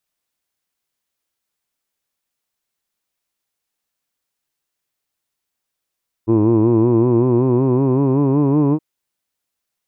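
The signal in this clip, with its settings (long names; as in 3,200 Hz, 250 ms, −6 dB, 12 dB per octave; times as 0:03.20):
vowel from formants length 2.52 s, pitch 108 Hz, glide +5.5 semitones, F1 340 Hz, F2 1,000 Hz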